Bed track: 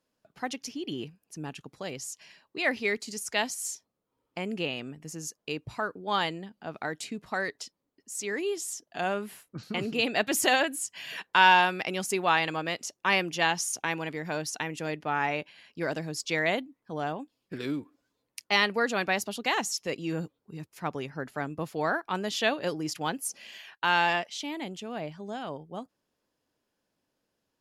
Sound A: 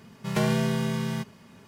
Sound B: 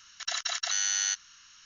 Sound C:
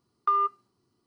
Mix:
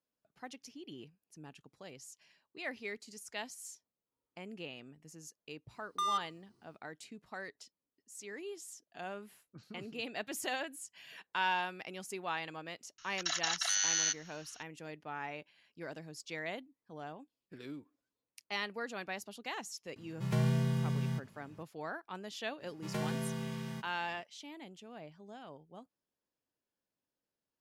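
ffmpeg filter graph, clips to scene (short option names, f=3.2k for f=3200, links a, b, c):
-filter_complex "[1:a]asplit=2[a][b];[0:a]volume=-13.5dB[c];[3:a]asoftclip=type=tanh:threshold=-31.5dB[d];[a]equalizer=f=120:w=2.1:g=13[e];[d]atrim=end=1.06,asetpts=PTS-STARTPTS,afade=t=in:d=0.004:c=hsin,afade=t=out:st=1.056:d=0.004:c=hsin,adelay=5710[f];[2:a]atrim=end=1.65,asetpts=PTS-STARTPTS,volume=-3dB,afade=t=in:d=0.004:c=hsin,afade=t=out:st=1.646:d=0.004:c=hsin,adelay=12980[g];[e]atrim=end=1.67,asetpts=PTS-STARTPTS,volume=-11.5dB,afade=t=in:d=0.004:c=hsin,afade=t=out:st=1.666:d=0.004:c=hsin,adelay=19960[h];[b]atrim=end=1.67,asetpts=PTS-STARTPTS,volume=-12dB,afade=t=in:d=0.05,afade=t=out:st=1.62:d=0.05,adelay=22580[i];[c][f][g][h][i]amix=inputs=5:normalize=0"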